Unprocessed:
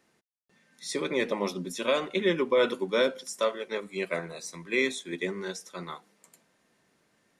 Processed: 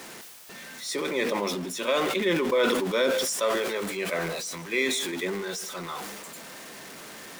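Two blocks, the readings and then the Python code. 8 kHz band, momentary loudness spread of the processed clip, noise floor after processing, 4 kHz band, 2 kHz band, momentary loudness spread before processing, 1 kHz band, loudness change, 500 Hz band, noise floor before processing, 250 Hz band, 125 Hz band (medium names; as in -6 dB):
+8.5 dB, 17 LU, -44 dBFS, +5.0 dB, +3.0 dB, 15 LU, +4.0 dB, +2.5 dB, +1.5 dB, -70 dBFS, +2.5 dB, +2.5 dB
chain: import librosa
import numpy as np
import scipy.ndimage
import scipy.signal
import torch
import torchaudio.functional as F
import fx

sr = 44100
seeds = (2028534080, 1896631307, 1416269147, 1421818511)

p1 = x + 0.5 * 10.0 ** (-36.5 / 20.0) * np.sign(x)
p2 = fx.low_shelf(p1, sr, hz=170.0, db=-10.5)
p3 = p2 + fx.echo_single(p2, sr, ms=155, db=-22.0, dry=0)
y = fx.sustainer(p3, sr, db_per_s=28.0)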